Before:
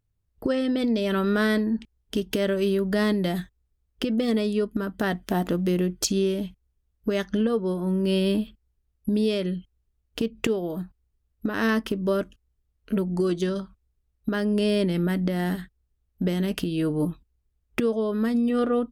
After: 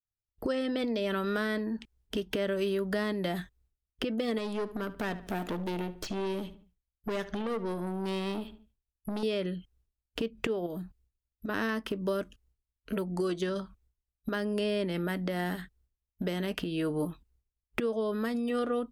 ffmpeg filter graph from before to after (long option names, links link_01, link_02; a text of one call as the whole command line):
ffmpeg -i in.wav -filter_complex "[0:a]asettb=1/sr,asplit=3[link_01][link_02][link_03];[link_01]atrim=end=4.384[link_04];[link_02]atrim=start=4.38:end=9.23,asetpts=PTS-STARTPTS,afade=type=in:duration=0.004:curve=qsin,afade=type=out:start_time=4.846:duration=0.004:curve=qsin,aeval=exprs='(tanh(17.8*val(0)+0.35)-tanh(0.35))/17.8':channel_layout=same,asplit=2[link_05][link_06];[link_06]adelay=73,lowpass=frequency=3500:poles=1,volume=-15.5dB,asplit=2[link_07][link_08];[link_08]adelay=73,lowpass=frequency=3500:poles=1,volume=0.39,asplit=2[link_09][link_10];[link_10]adelay=73,lowpass=frequency=3500:poles=1,volume=0.39[link_11];[link_05][link_07][link_09][link_11]amix=inputs=4:normalize=0,atrim=end_sample=213885[link_12];[link_03]atrim=start=9.226[link_13];[link_04][link_12]acrossfade=duration=0.004:curve1=hsin:curve2=qsin[link_14];[link_14][link_13]acrossfade=duration=0.004:curve1=qsin:curve2=hsin,asettb=1/sr,asplit=3[link_15][link_16][link_17];[link_15]atrim=end=10.664[link_18];[link_16]atrim=start=10.66:end=11.49,asetpts=PTS-STARTPTS,afade=type=in:duration=0.004:curve=qsin,afade=type=out:start_time=0.826:duration=0.004:curve=qsin,equalizer=frequency=1100:width_type=o:width=1.7:gain=-4.5,acompressor=threshold=-34dB:ratio=2.5:attack=3.2:release=140:knee=1:detection=peak[link_19];[link_17]atrim=start=11.486[link_20];[link_18][link_19]acrossfade=duration=0.004:curve1=hsin:curve2=qsin[link_21];[link_21][link_20]acrossfade=duration=0.004:curve1=qsin:curve2=hsin,agate=range=-33dB:threshold=-59dB:ratio=3:detection=peak,acrossover=split=440|3300[link_22][link_23][link_24];[link_22]acompressor=threshold=-35dB:ratio=4[link_25];[link_23]acompressor=threshold=-31dB:ratio=4[link_26];[link_24]acompressor=threshold=-49dB:ratio=4[link_27];[link_25][link_26][link_27]amix=inputs=3:normalize=0" out.wav